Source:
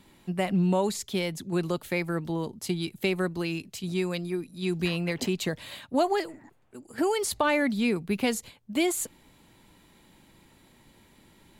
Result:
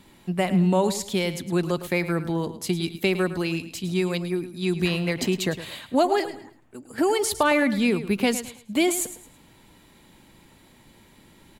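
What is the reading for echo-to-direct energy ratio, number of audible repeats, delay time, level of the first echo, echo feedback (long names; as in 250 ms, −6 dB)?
−12.5 dB, 3, 108 ms, −13.0 dB, 30%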